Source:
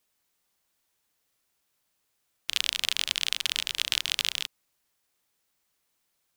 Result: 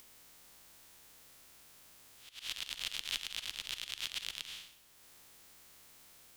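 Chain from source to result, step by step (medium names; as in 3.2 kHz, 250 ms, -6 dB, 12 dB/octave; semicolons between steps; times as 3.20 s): spectral blur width 230 ms; bass shelf 190 Hz +4.5 dB; in parallel at 0 dB: compression 4:1, threshold -45 dBFS, peak gain reduction 16 dB; on the sum: peak limiter -15 dBFS, peak gain reduction 5.5 dB; upward compressor, threshold -59 dBFS; slow attack 282 ms; reverberation, pre-delay 3 ms, DRR 13.5 dB; trim +7 dB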